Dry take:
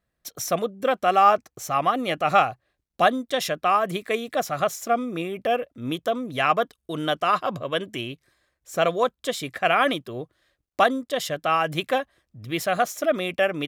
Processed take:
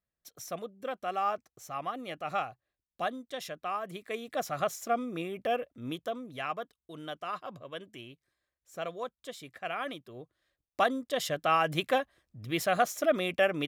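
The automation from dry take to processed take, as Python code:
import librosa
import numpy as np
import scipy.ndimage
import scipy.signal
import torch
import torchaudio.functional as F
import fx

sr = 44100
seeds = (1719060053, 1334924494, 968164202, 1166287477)

y = fx.gain(x, sr, db=fx.line((3.92, -14.0), (4.47, -7.0), (5.72, -7.0), (6.61, -15.5), (9.87, -15.5), (11.29, -4.0)))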